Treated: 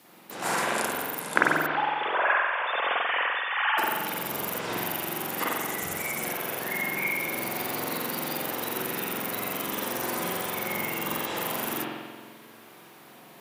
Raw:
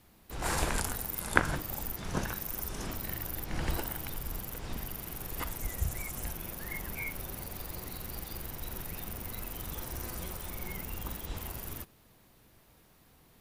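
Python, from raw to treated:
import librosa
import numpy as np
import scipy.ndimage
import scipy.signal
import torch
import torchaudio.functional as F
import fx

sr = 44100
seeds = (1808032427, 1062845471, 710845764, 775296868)

y = fx.sine_speech(x, sr, at=(1.66, 3.78))
y = scipy.signal.sosfilt(scipy.signal.bessel(4, 270.0, 'highpass', norm='mag', fs=sr, output='sos'), y)
y = fx.rider(y, sr, range_db=5, speed_s=0.5)
y = fx.rev_spring(y, sr, rt60_s=1.5, pass_ms=(45,), chirp_ms=70, drr_db=-5.0)
y = F.gain(torch.from_numpy(y), 5.0).numpy()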